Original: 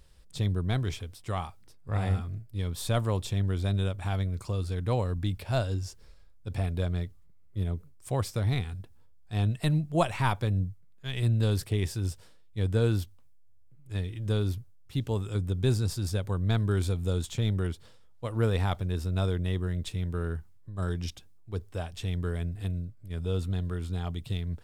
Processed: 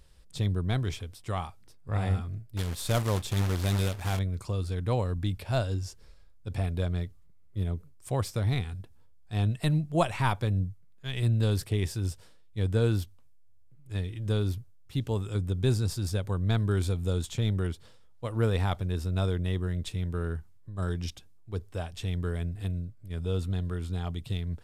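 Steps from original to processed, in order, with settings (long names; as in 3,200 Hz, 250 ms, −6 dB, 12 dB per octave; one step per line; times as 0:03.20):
0:02.57–0:04.19: log-companded quantiser 4 bits
downsampling to 32,000 Hz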